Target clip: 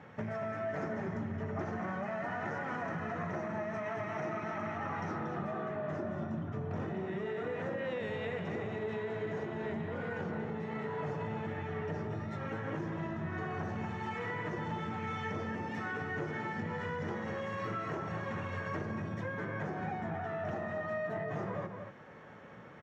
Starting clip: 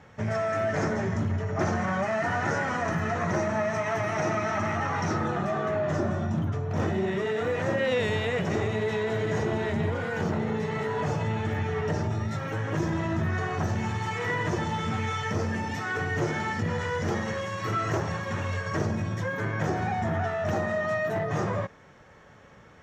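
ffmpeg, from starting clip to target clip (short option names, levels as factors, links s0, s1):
-filter_complex "[0:a]highpass=160,bass=f=250:g=4,treble=f=4000:g=-13,acompressor=threshold=0.0158:ratio=6,asplit=2[s0][s1];[s1]adelay=233.2,volume=0.501,highshelf=f=4000:g=-5.25[s2];[s0][s2]amix=inputs=2:normalize=0"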